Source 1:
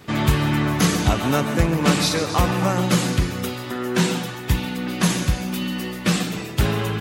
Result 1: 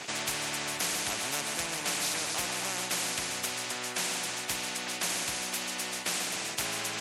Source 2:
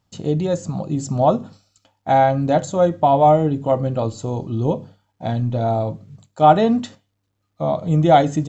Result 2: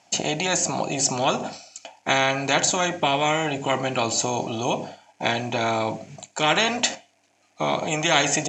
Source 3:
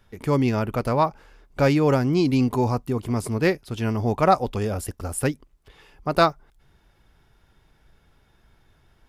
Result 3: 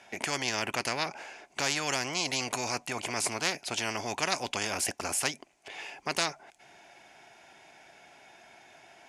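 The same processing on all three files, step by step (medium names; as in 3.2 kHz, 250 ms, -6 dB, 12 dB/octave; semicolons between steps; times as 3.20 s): cabinet simulation 400–9800 Hz, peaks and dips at 470 Hz -8 dB, 700 Hz +10 dB, 1.2 kHz -9 dB, 2.4 kHz +8 dB, 3.7 kHz -4 dB, 6.5 kHz +6 dB; spectrum-flattening compressor 4:1; trim -7 dB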